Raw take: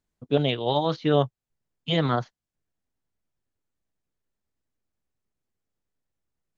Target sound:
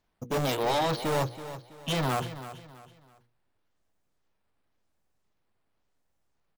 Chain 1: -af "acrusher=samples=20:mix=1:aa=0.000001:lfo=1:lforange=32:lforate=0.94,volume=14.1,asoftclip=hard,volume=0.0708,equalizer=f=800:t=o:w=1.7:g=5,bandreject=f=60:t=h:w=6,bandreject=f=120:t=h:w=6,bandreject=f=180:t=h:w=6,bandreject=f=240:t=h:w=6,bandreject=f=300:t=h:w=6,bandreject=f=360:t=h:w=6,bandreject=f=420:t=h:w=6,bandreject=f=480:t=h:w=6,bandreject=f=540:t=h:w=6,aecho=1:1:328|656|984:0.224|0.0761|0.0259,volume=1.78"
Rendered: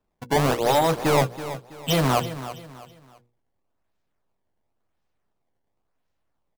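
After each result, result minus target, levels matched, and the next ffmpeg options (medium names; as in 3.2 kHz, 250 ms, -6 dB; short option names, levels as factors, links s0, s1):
decimation with a swept rate: distortion +13 dB; overload inside the chain: distortion -5 dB
-af "acrusher=samples=4:mix=1:aa=0.000001:lfo=1:lforange=6.4:lforate=0.94,volume=14.1,asoftclip=hard,volume=0.0708,equalizer=f=800:t=o:w=1.7:g=5,bandreject=f=60:t=h:w=6,bandreject=f=120:t=h:w=6,bandreject=f=180:t=h:w=6,bandreject=f=240:t=h:w=6,bandreject=f=300:t=h:w=6,bandreject=f=360:t=h:w=6,bandreject=f=420:t=h:w=6,bandreject=f=480:t=h:w=6,bandreject=f=540:t=h:w=6,aecho=1:1:328|656|984:0.224|0.0761|0.0259,volume=1.78"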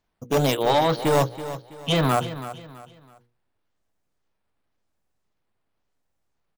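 overload inside the chain: distortion -4 dB
-af "acrusher=samples=4:mix=1:aa=0.000001:lfo=1:lforange=6.4:lforate=0.94,volume=42.2,asoftclip=hard,volume=0.0237,equalizer=f=800:t=o:w=1.7:g=5,bandreject=f=60:t=h:w=6,bandreject=f=120:t=h:w=6,bandreject=f=180:t=h:w=6,bandreject=f=240:t=h:w=6,bandreject=f=300:t=h:w=6,bandreject=f=360:t=h:w=6,bandreject=f=420:t=h:w=6,bandreject=f=480:t=h:w=6,bandreject=f=540:t=h:w=6,aecho=1:1:328|656|984:0.224|0.0761|0.0259,volume=1.78"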